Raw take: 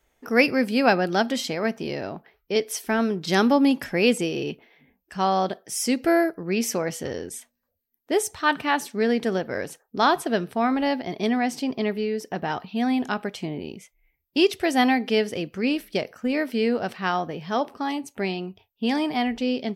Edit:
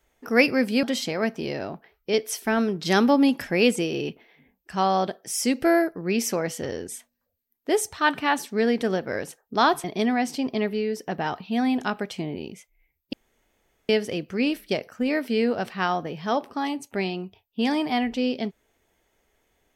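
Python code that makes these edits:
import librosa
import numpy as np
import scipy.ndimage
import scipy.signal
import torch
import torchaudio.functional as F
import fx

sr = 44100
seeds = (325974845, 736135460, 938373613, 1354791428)

y = fx.edit(x, sr, fx.cut(start_s=0.83, length_s=0.42),
    fx.cut(start_s=10.26, length_s=0.82),
    fx.room_tone_fill(start_s=14.37, length_s=0.76), tone=tone)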